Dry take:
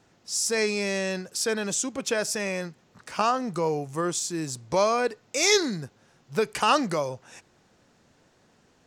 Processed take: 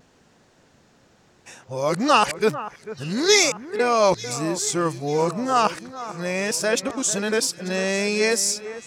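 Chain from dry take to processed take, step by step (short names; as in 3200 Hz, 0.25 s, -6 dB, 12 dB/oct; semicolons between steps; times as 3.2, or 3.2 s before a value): whole clip reversed; vibrato 0.76 Hz 22 cents; echo with dull and thin repeats by turns 0.445 s, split 2100 Hz, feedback 70%, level -14 dB; gain +4.5 dB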